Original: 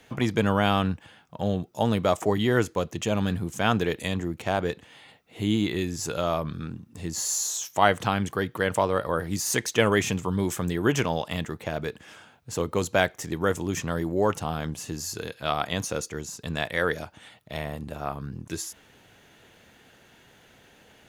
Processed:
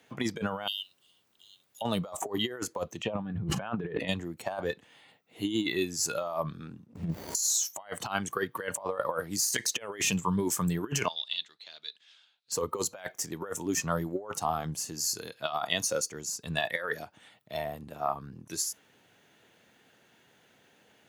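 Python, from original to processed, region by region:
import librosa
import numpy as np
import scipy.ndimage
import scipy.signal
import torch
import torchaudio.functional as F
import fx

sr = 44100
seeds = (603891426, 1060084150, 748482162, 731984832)

y = fx.cheby_ripple_highpass(x, sr, hz=2800.0, ripple_db=3, at=(0.66, 1.81), fade=0.02)
y = fx.dmg_noise_colour(y, sr, seeds[0], colour='pink', level_db=-66.0, at=(0.66, 1.81), fade=0.02)
y = fx.chain(y, sr, fx.air_absorb(metres=410.0),
    fx.env_flatten(amount_pct=100), at=(3.03, 4.08))
y = fx.chain(y, sr, fx.lowpass(hz=10000.0, slope=12),
    fx.peak_eq(hz=190.0, db=7.5, octaves=2.5),
    fx.running_max(window=33), at=(6.86, 7.35))
y = fx.chain(y, sr, fx.lowpass_res(hz=3900.0, q=4.2),
    fx.differentiator(), at=(11.08, 12.52))
y = scipy.signal.sosfilt(scipy.signal.butter(2, 130.0, 'highpass', fs=sr, output='sos'), y)
y = fx.noise_reduce_blind(y, sr, reduce_db=11)
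y = fx.over_compress(y, sr, threshold_db=-30.0, ratio=-0.5)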